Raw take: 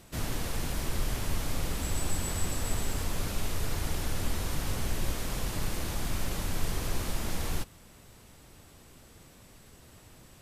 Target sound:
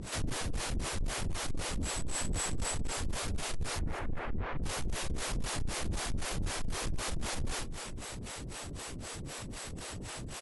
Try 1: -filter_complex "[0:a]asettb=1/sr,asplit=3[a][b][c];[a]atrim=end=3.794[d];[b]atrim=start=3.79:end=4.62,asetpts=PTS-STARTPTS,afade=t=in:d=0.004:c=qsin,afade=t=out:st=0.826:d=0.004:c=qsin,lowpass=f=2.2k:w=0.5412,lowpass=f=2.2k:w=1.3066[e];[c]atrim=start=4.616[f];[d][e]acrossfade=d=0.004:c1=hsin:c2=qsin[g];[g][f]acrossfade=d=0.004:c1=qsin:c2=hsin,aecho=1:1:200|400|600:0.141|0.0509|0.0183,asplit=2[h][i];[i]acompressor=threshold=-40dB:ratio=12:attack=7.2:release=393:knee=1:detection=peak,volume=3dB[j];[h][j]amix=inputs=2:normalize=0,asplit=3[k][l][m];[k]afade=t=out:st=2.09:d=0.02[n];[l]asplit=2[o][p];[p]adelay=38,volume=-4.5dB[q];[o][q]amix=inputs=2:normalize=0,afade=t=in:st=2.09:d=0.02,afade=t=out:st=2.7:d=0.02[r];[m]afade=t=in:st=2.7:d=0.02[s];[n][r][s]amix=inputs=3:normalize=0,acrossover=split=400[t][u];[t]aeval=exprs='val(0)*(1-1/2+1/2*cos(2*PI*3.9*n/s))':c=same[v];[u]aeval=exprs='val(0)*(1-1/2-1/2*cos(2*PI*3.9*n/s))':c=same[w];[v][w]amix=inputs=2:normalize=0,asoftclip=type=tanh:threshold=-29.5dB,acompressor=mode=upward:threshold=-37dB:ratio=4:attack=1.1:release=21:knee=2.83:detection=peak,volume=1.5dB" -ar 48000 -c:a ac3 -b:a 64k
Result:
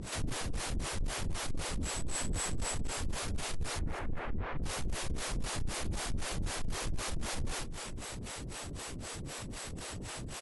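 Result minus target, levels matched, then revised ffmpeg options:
compressor: peak gain reduction +6.5 dB
-filter_complex "[0:a]asettb=1/sr,asplit=3[a][b][c];[a]atrim=end=3.794[d];[b]atrim=start=3.79:end=4.62,asetpts=PTS-STARTPTS,afade=t=in:d=0.004:c=qsin,afade=t=out:st=0.826:d=0.004:c=qsin,lowpass=f=2.2k:w=0.5412,lowpass=f=2.2k:w=1.3066[e];[c]atrim=start=4.616[f];[d][e]acrossfade=d=0.004:c1=hsin:c2=qsin[g];[g][f]acrossfade=d=0.004:c1=qsin:c2=hsin,aecho=1:1:200|400|600:0.141|0.0509|0.0183,asplit=2[h][i];[i]acompressor=threshold=-33dB:ratio=12:attack=7.2:release=393:knee=1:detection=peak,volume=3dB[j];[h][j]amix=inputs=2:normalize=0,asplit=3[k][l][m];[k]afade=t=out:st=2.09:d=0.02[n];[l]asplit=2[o][p];[p]adelay=38,volume=-4.5dB[q];[o][q]amix=inputs=2:normalize=0,afade=t=in:st=2.09:d=0.02,afade=t=out:st=2.7:d=0.02[r];[m]afade=t=in:st=2.7:d=0.02[s];[n][r][s]amix=inputs=3:normalize=0,acrossover=split=400[t][u];[t]aeval=exprs='val(0)*(1-1/2+1/2*cos(2*PI*3.9*n/s))':c=same[v];[u]aeval=exprs='val(0)*(1-1/2-1/2*cos(2*PI*3.9*n/s))':c=same[w];[v][w]amix=inputs=2:normalize=0,asoftclip=type=tanh:threshold=-29.5dB,acompressor=mode=upward:threshold=-37dB:ratio=4:attack=1.1:release=21:knee=2.83:detection=peak,volume=1.5dB" -ar 48000 -c:a ac3 -b:a 64k

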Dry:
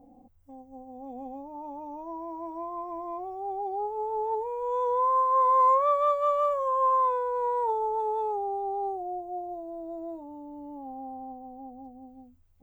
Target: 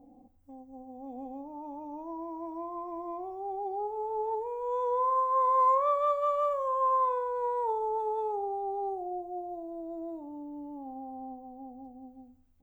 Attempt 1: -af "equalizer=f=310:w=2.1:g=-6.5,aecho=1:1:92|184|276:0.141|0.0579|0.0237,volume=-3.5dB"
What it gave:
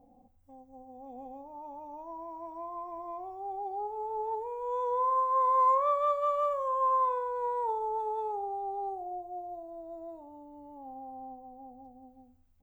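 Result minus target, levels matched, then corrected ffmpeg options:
250 Hz band -9.0 dB
-af "equalizer=f=310:w=2.1:g=4.5,aecho=1:1:92|184|276:0.141|0.0579|0.0237,volume=-3.5dB"

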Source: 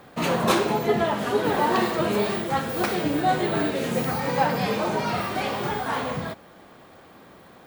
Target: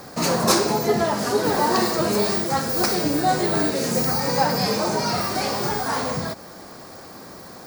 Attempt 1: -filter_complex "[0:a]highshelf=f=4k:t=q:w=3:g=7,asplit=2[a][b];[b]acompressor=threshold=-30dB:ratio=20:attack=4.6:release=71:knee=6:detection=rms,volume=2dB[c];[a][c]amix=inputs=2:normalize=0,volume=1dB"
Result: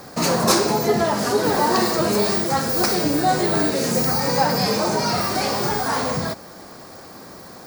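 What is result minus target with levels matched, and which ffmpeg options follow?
compressor: peak gain reduction -9 dB
-filter_complex "[0:a]highshelf=f=4k:t=q:w=3:g=7,asplit=2[a][b];[b]acompressor=threshold=-39.5dB:ratio=20:attack=4.6:release=71:knee=6:detection=rms,volume=2dB[c];[a][c]amix=inputs=2:normalize=0,volume=1dB"

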